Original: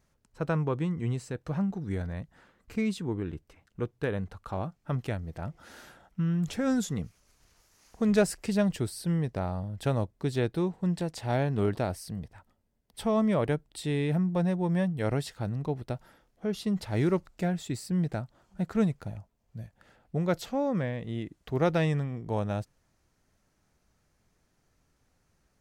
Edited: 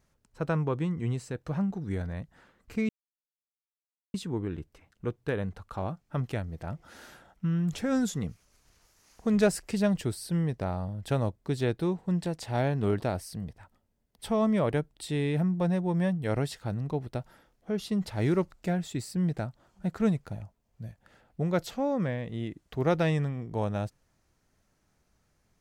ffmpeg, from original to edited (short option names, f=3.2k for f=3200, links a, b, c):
-filter_complex "[0:a]asplit=2[a][b];[a]atrim=end=2.89,asetpts=PTS-STARTPTS,afade=t=out:st=2.886:d=0.004:c=hsin,apad=pad_dur=1.25[c];[b]atrim=start=2.89,asetpts=PTS-STARTPTS,afade=t=in:d=0.004:c=hsin[d];[c][d]concat=n=2:v=0:a=1"